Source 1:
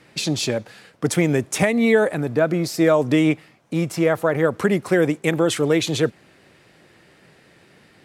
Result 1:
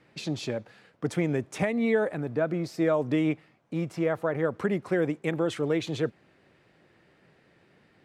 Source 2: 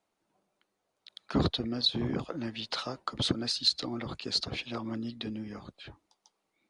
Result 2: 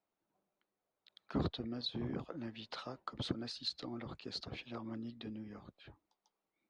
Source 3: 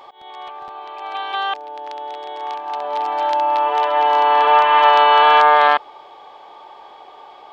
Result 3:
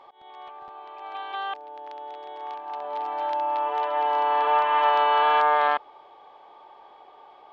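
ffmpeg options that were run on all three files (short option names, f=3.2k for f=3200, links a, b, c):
-af "lowpass=f=2.5k:p=1,volume=-8dB"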